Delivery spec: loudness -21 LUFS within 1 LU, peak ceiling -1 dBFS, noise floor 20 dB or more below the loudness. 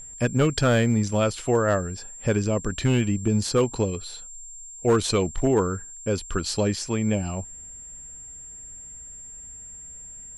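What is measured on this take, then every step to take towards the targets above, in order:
clipped samples 0.5%; clipping level -13.0 dBFS; steady tone 7.4 kHz; tone level -39 dBFS; loudness -24.5 LUFS; peak level -13.0 dBFS; loudness target -21.0 LUFS
-> clip repair -13 dBFS; band-stop 7.4 kHz, Q 30; trim +3.5 dB

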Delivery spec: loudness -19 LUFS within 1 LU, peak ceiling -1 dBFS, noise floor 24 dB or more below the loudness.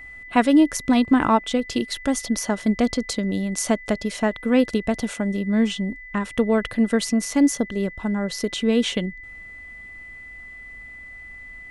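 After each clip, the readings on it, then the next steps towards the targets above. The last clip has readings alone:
steady tone 2 kHz; tone level -38 dBFS; loudness -22.0 LUFS; peak level -4.0 dBFS; loudness target -19.0 LUFS
-> band-stop 2 kHz, Q 30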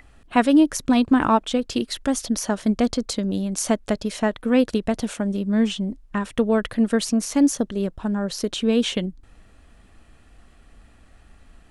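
steady tone not found; loudness -22.0 LUFS; peak level -4.5 dBFS; loudness target -19.0 LUFS
-> trim +3 dB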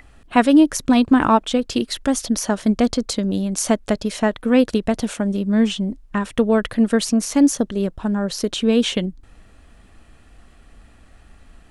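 loudness -19.0 LUFS; peak level -1.5 dBFS; noise floor -50 dBFS

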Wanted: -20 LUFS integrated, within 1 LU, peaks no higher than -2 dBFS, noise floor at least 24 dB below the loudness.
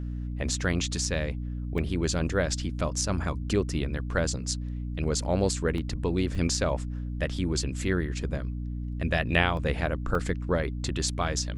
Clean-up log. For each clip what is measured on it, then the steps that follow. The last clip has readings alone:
dropouts 5; longest dropout 1.8 ms; hum 60 Hz; highest harmonic 300 Hz; hum level -31 dBFS; loudness -29.0 LUFS; peak level -7.0 dBFS; loudness target -20.0 LUFS
-> interpolate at 1.78/5.78/6.35/9.57/10.15 s, 1.8 ms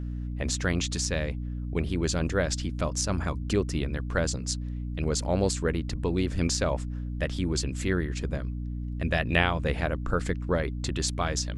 dropouts 0; hum 60 Hz; highest harmonic 300 Hz; hum level -31 dBFS
-> hum notches 60/120/180/240/300 Hz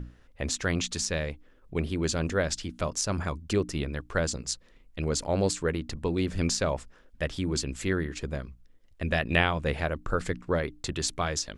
hum not found; loudness -30.0 LUFS; peak level -7.0 dBFS; loudness target -20.0 LUFS
-> trim +10 dB; peak limiter -2 dBFS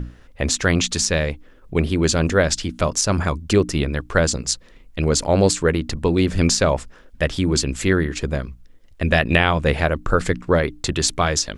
loudness -20.0 LUFS; peak level -2.0 dBFS; noise floor -47 dBFS

